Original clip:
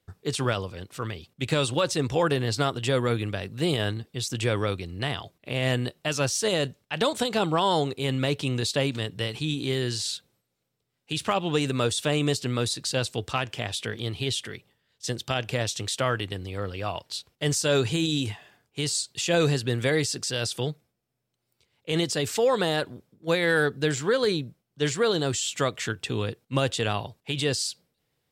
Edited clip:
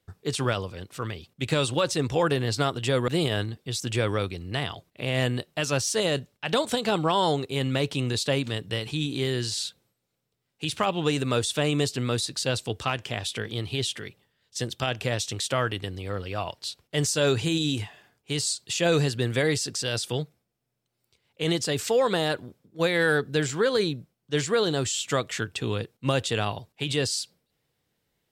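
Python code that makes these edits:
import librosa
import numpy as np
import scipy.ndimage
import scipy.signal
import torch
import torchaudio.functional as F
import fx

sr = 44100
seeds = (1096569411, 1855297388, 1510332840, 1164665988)

y = fx.edit(x, sr, fx.cut(start_s=3.08, length_s=0.48), tone=tone)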